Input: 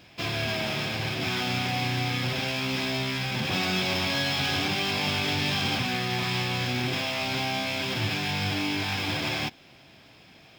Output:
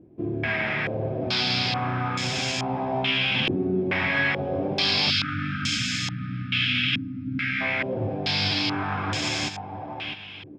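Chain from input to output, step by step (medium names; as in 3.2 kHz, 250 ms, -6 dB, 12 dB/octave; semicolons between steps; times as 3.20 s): feedback delay 653 ms, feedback 34%, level -9 dB; spectral selection erased 5.10–7.61 s, 320–1200 Hz; step-sequenced low-pass 2.3 Hz 350–7000 Hz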